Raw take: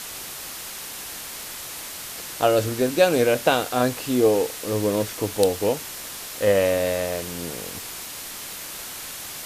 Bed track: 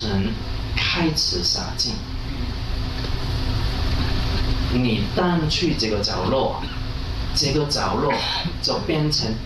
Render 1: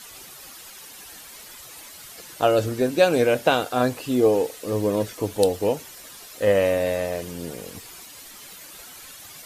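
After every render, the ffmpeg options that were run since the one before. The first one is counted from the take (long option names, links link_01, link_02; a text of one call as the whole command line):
ffmpeg -i in.wav -af "afftdn=noise_reduction=11:noise_floor=-36" out.wav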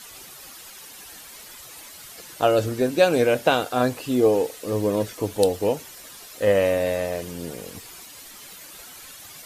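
ffmpeg -i in.wav -af anull out.wav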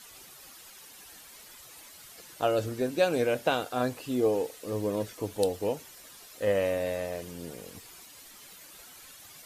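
ffmpeg -i in.wav -af "volume=-7.5dB" out.wav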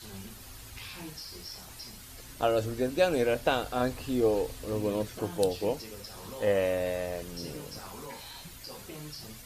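ffmpeg -i in.wav -i bed.wav -filter_complex "[1:a]volume=-23dB[link_01];[0:a][link_01]amix=inputs=2:normalize=0" out.wav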